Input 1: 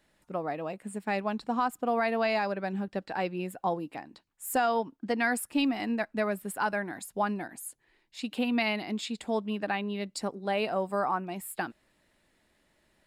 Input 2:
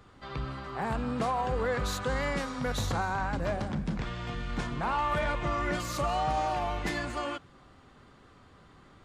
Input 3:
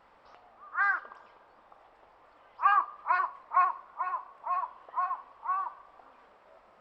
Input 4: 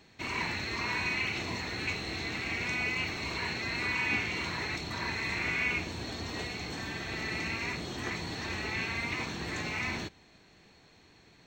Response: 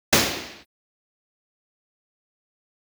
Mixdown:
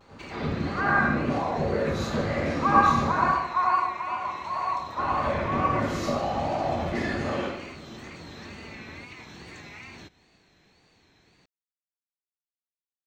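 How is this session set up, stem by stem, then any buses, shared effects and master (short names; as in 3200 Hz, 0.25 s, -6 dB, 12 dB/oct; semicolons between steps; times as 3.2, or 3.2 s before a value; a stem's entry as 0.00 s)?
off
-6.0 dB, 0.00 s, muted 3.24–4.9, bus A, send -12 dB, compressor, threshold -34 dBFS, peak gain reduction 8.5 dB; whisperiser
-2.5 dB, 0.00 s, no bus, send -19 dB, tilt shelf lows +7 dB, about 1400 Hz; notch 710 Hz, Q 16
-2.5 dB, 0.00 s, bus A, no send, vibrato 2.5 Hz 8.9 cents
bus A: 0.0 dB, wow and flutter 91 cents; compressor, threshold -41 dBFS, peak gain reduction 12 dB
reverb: on, RT60 0.80 s, pre-delay 77 ms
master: dry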